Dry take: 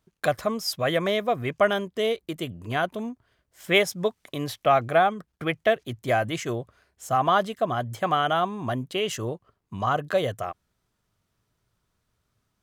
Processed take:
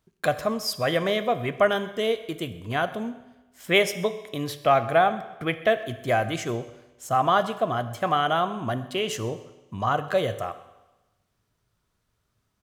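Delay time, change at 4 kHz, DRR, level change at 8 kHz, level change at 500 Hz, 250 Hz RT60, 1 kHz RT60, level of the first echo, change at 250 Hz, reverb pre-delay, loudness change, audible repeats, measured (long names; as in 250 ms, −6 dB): 128 ms, +0.5 dB, 10.5 dB, +0.5 dB, +0.5 dB, 1.1 s, 1.1 s, −21.0 dB, +0.5 dB, 12 ms, +0.5 dB, 1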